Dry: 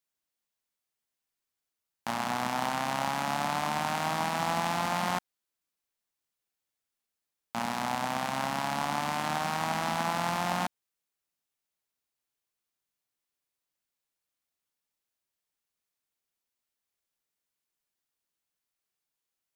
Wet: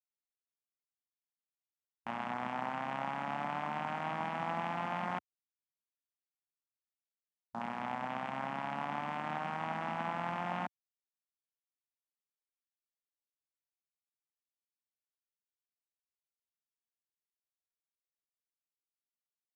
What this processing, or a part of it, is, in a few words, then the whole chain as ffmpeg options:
over-cleaned archive recording: -af "highpass=100,lowpass=7700,afwtdn=0.0126,volume=0.473"

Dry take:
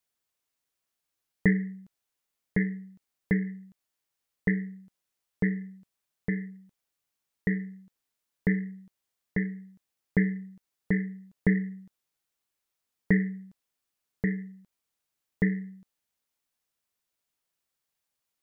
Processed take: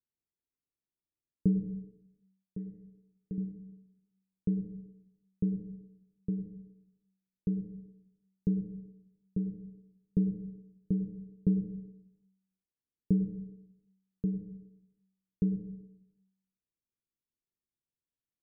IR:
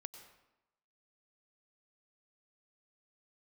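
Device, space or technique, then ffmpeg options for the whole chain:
next room: -filter_complex "[0:a]asettb=1/sr,asplit=3[s0][s1][s2];[s0]atrim=end=1.664[s3];[s1]atrim=start=1.66:end=3.38,asetpts=PTS-STARTPTS,afade=t=in:d=0.004:c=qsin,afade=t=out:st=1.716:d=0.004:c=qsin,tiltshelf=f=1400:g=-10[s4];[s2]atrim=start=3.376[s5];[s3][s4]acrossfade=d=0.004:c1=hsin:c2=qsin[s6];[s6][s5]acrossfade=d=0.004:c1=qsin:c2=hsin,lowpass=f=390:w=0.5412,lowpass=f=390:w=1.3066[s7];[1:a]atrim=start_sample=2205[s8];[s7][s8]afir=irnorm=-1:irlink=0,volume=1.26"

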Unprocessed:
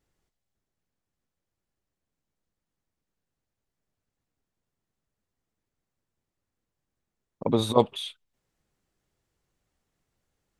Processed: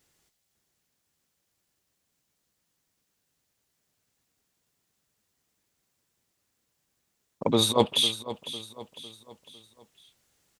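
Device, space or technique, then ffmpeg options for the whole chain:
compression on the reversed sound: -af "highpass=f=94:p=1,highshelf=f=2200:g=11,areverse,acompressor=threshold=0.0794:ratio=6,areverse,aecho=1:1:503|1006|1509|2012:0.2|0.0898|0.0404|0.0182,volume=1.68"

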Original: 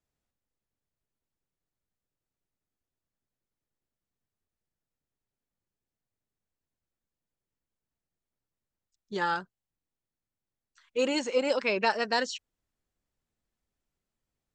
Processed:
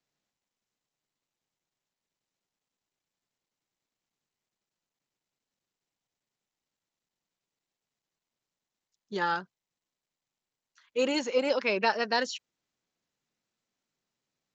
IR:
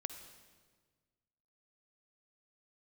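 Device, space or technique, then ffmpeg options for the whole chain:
Bluetooth headset: -af "highpass=f=130:w=0.5412,highpass=f=130:w=1.3066,aresample=16000,aresample=44100" -ar 16000 -c:a sbc -b:a 64k

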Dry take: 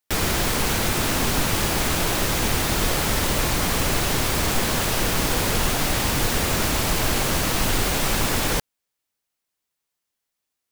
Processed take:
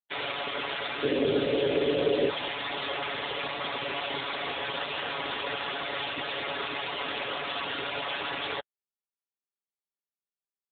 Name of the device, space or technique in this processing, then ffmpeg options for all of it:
mobile call with aggressive noise cancelling: -filter_complex "[0:a]lowpass=6400,bass=f=250:g=-14,treble=f=4000:g=13,aecho=1:1:7.1:0.78,asplit=3[s0][s1][s2];[s0]afade=t=out:st=1.02:d=0.02[s3];[s1]lowshelf=f=630:t=q:w=3:g=8,afade=t=in:st=1.02:d=0.02,afade=t=out:st=2.29:d=0.02[s4];[s2]afade=t=in:st=2.29:d=0.02[s5];[s3][s4][s5]amix=inputs=3:normalize=0,highpass=f=180:p=1,afftdn=nr=32:nf=-27,volume=0.562" -ar 8000 -c:a libopencore_amrnb -b:a 7950

